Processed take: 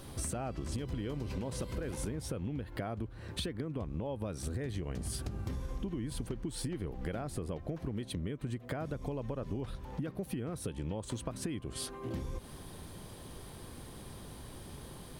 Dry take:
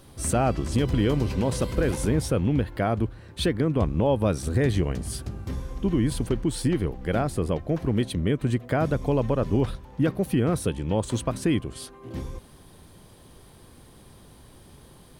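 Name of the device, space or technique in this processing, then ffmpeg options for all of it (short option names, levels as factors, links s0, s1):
serial compression, peaks first: -af "acompressor=threshold=0.0224:ratio=6,acompressor=threshold=0.0126:ratio=2.5,volume=1.33"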